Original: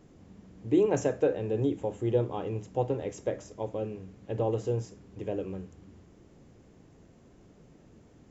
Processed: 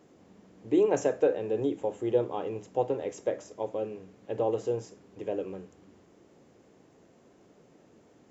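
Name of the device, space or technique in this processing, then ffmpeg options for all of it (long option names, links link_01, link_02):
filter by subtraction: -filter_complex "[0:a]asplit=2[link_01][link_02];[link_02]lowpass=500,volume=-1[link_03];[link_01][link_03]amix=inputs=2:normalize=0"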